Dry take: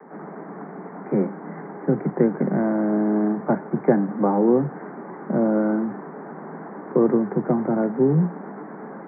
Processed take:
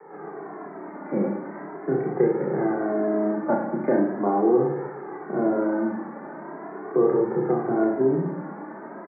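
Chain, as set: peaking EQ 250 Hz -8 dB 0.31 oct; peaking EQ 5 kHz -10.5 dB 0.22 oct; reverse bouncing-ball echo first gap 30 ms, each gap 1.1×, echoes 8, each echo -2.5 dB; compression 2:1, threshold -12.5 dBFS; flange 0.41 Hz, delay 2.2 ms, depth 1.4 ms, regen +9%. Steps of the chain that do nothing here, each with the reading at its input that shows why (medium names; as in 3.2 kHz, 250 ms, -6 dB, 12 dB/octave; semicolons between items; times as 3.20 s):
peaking EQ 5 kHz: input has nothing above 1.6 kHz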